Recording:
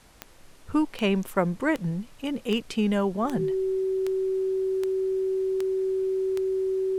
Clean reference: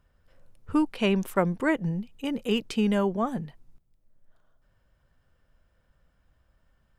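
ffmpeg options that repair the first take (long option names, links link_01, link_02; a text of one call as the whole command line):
ffmpeg -i in.wav -af "adeclick=threshold=4,bandreject=frequency=380:width=30,agate=range=-21dB:threshold=-41dB,asetnsamples=nb_out_samples=441:pad=0,asendcmd='3.25 volume volume -3.5dB',volume=0dB" out.wav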